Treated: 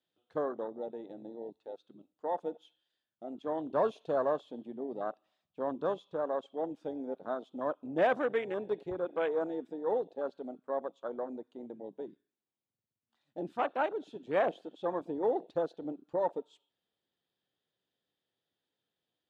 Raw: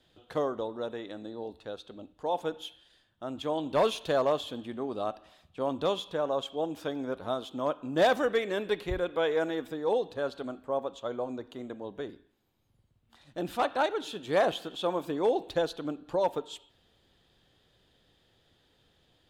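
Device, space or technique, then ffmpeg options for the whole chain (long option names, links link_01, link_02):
over-cleaned archive recording: -af "highpass=170,lowpass=7500,afwtdn=0.02,volume=-3.5dB"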